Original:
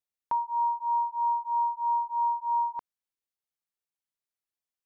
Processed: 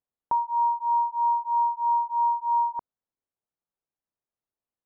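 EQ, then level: low-pass 1 kHz 12 dB/octave; +6.0 dB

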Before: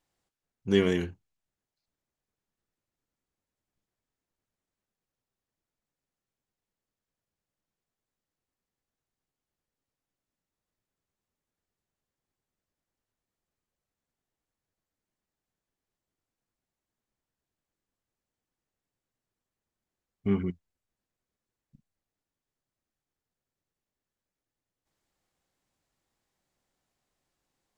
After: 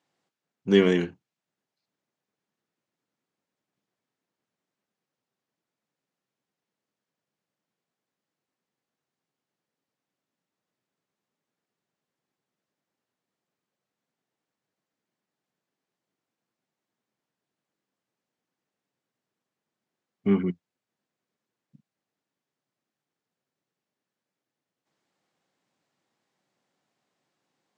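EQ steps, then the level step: high-pass 140 Hz 24 dB/octave; distance through air 68 m; +5.0 dB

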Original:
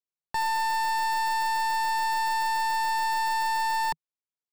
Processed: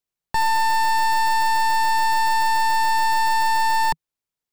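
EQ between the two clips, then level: bass shelf 170 Hz +7.5 dB; +6.5 dB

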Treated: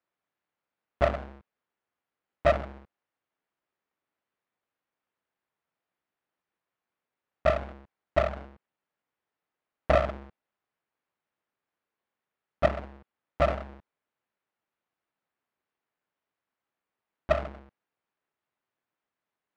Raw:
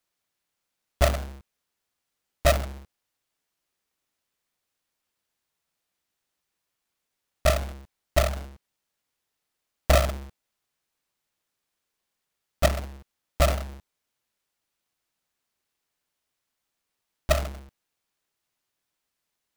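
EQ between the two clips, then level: high-pass 170 Hz 6 dB/octave; low-pass 1.9 kHz 12 dB/octave; 0.0 dB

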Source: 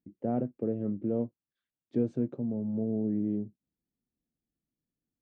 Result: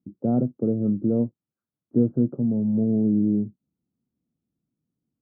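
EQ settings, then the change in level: high-pass 59 Hz; elliptic low-pass 1.4 kHz, stop band 40 dB; peaking EQ 150 Hz +12 dB 2.9 oct; 0.0 dB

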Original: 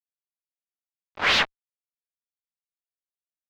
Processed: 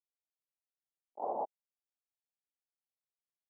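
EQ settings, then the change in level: high-pass 260 Hz 12 dB/octave; steep low-pass 860 Hz 72 dB/octave; differentiator; +17.5 dB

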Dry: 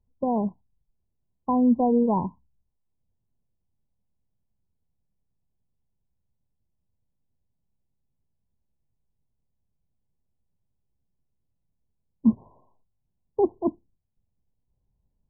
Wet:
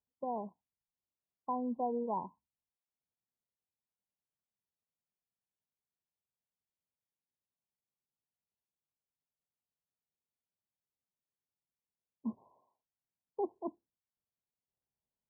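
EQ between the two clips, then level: low-pass 1 kHz; differentiator; +11.0 dB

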